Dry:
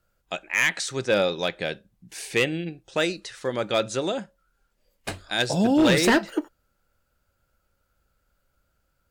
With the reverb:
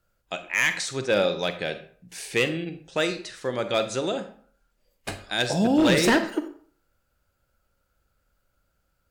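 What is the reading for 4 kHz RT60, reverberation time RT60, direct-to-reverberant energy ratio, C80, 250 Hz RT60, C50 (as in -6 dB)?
0.35 s, 0.50 s, 9.0 dB, 14.5 dB, 0.50 s, 11.0 dB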